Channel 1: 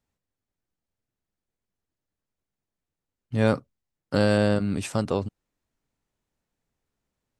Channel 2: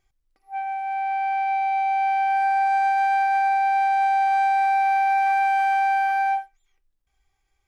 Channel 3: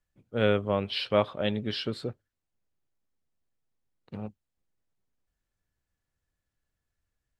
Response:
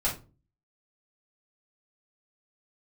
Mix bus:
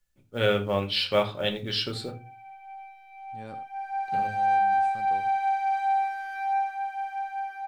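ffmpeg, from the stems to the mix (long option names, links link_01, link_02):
-filter_complex "[0:a]volume=-14.5dB,asplit=2[link_01][link_02];[link_02]volume=-18.5dB[link_03];[1:a]flanger=delay=16.5:depth=7.2:speed=0.31,adelay=1400,volume=-10dB,afade=type=in:start_time=3.68:duration=0.72:silence=0.223872,afade=type=out:start_time=6.36:duration=0.4:silence=0.421697,asplit=2[link_04][link_05];[link_05]volume=-6dB[link_06];[2:a]highshelf=frequency=2300:gain=11,acrusher=bits=8:mode=log:mix=0:aa=0.000001,volume=-5dB,asplit=4[link_07][link_08][link_09][link_10];[link_08]volume=-9dB[link_11];[link_09]volume=-17dB[link_12];[link_10]apad=whole_len=326334[link_13];[link_01][link_13]sidechaincompress=threshold=-52dB:ratio=3:attack=16:release=1480[link_14];[3:a]atrim=start_sample=2205[link_15];[link_06][link_11]amix=inputs=2:normalize=0[link_16];[link_16][link_15]afir=irnorm=-1:irlink=0[link_17];[link_03][link_12]amix=inputs=2:normalize=0,aecho=0:1:85:1[link_18];[link_14][link_04][link_07][link_17][link_18]amix=inputs=5:normalize=0"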